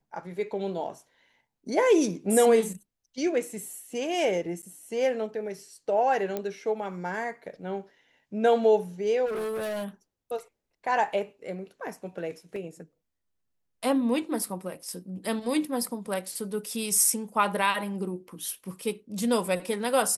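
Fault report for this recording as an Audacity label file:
4.620000	4.630000	drop-out 9.3 ms
6.370000	6.370000	click −17 dBFS
9.250000	9.850000	clipping −29 dBFS
12.560000	12.560000	drop-out 2.6 ms

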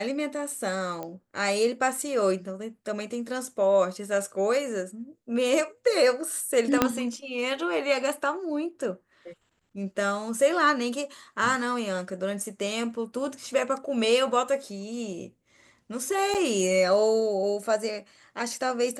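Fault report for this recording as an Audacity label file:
1.030000	1.030000	click −21 dBFS
6.820000	6.820000	click −5 dBFS
16.340000	16.350000	drop-out 7.3 ms

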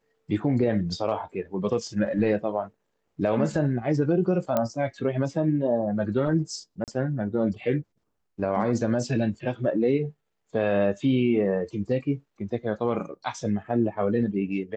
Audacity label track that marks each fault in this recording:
4.570000	4.570000	click −11 dBFS
6.840000	6.880000	drop-out 38 ms

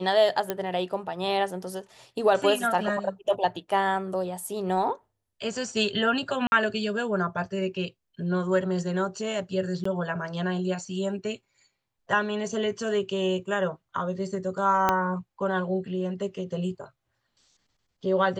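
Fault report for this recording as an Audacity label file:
0.500000	0.500000	click −12 dBFS
6.470000	6.520000	drop-out 51 ms
9.840000	9.850000	drop-out 14 ms
14.890000	14.890000	click −8 dBFS

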